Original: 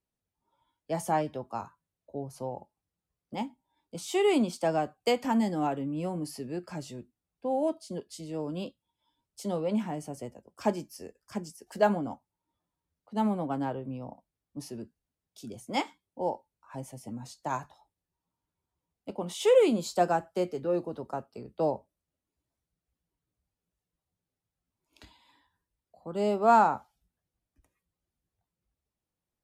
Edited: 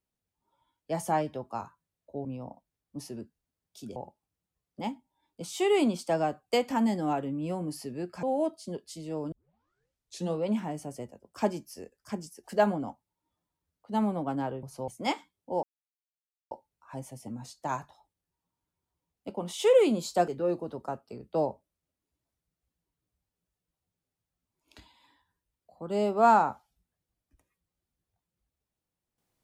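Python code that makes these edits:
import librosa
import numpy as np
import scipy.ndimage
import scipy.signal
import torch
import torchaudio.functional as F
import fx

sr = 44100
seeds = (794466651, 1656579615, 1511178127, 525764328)

y = fx.edit(x, sr, fx.swap(start_s=2.25, length_s=0.25, other_s=13.86, other_length_s=1.71),
    fx.cut(start_s=6.77, length_s=0.69),
    fx.tape_start(start_s=8.55, length_s=1.04),
    fx.insert_silence(at_s=16.32, length_s=0.88),
    fx.cut(start_s=20.09, length_s=0.44), tone=tone)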